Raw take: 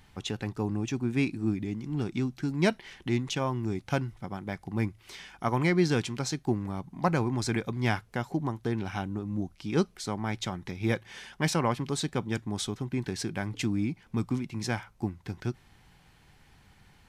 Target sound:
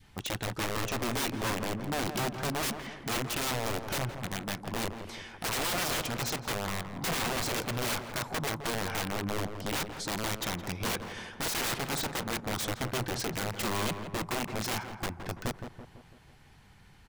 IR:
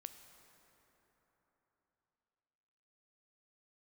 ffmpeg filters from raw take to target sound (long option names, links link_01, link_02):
-filter_complex "[0:a]adynamicequalizer=threshold=0.00631:dfrequency=950:dqfactor=1.1:tfrequency=950:tqfactor=1.1:attack=5:release=100:ratio=0.375:range=3.5:mode=boostabove:tftype=bell,aeval=exprs='(mod(21.1*val(0)+1,2)-1)/21.1':channel_layout=same,asplit=2[link_01][link_02];[link_02]adelay=167,lowpass=frequency=1600:poles=1,volume=-7.5dB,asplit=2[link_03][link_04];[link_04]adelay=167,lowpass=frequency=1600:poles=1,volume=0.54,asplit=2[link_05][link_06];[link_06]adelay=167,lowpass=frequency=1600:poles=1,volume=0.54,asplit=2[link_07][link_08];[link_08]adelay=167,lowpass=frequency=1600:poles=1,volume=0.54,asplit=2[link_09][link_10];[link_10]adelay=167,lowpass=frequency=1600:poles=1,volume=0.54,asplit=2[link_11][link_12];[link_12]adelay=167,lowpass=frequency=1600:poles=1,volume=0.54,asplit=2[link_13][link_14];[link_14]adelay=167,lowpass=frequency=1600:poles=1,volume=0.54[link_15];[link_03][link_05][link_07][link_09][link_11][link_13][link_15]amix=inputs=7:normalize=0[link_16];[link_01][link_16]amix=inputs=2:normalize=0"